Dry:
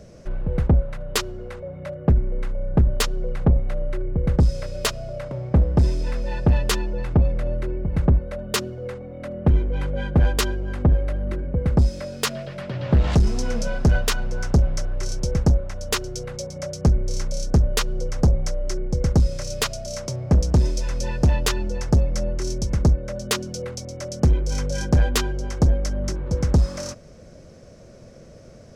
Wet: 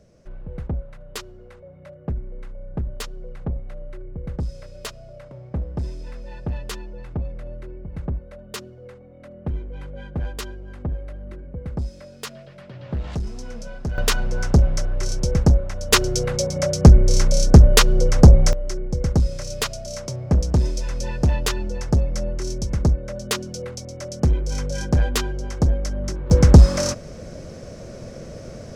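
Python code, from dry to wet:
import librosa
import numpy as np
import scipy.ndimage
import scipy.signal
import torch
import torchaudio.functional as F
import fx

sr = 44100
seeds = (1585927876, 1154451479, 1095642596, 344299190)

y = fx.gain(x, sr, db=fx.steps((0.0, -10.0), (13.98, 2.5), (15.93, 9.0), (18.53, -1.0), (26.3, 9.0)))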